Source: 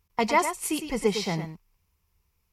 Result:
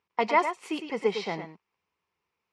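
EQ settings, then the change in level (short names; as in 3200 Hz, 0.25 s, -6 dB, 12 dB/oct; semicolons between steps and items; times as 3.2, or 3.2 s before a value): HPF 310 Hz 12 dB/oct; LPF 3100 Hz 12 dB/oct; 0.0 dB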